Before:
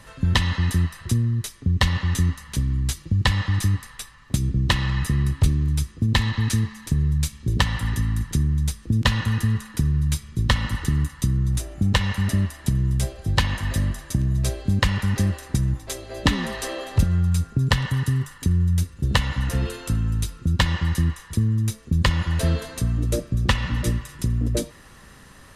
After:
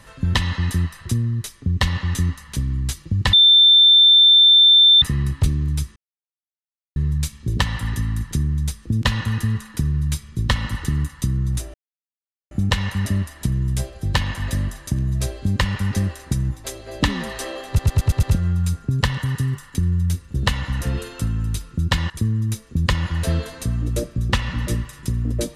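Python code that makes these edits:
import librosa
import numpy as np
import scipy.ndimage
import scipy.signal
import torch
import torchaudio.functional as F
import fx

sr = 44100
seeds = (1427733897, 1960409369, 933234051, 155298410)

y = fx.edit(x, sr, fx.bleep(start_s=3.33, length_s=1.69, hz=3560.0, db=-8.0),
    fx.silence(start_s=5.96, length_s=1.0),
    fx.insert_silence(at_s=11.74, length_s=0.77),
    fx.stutter(start_s=16.91, slice_s=0.11, count=6),
    fx.cut(start_s=20.78, length_s=0.48), tone=tone)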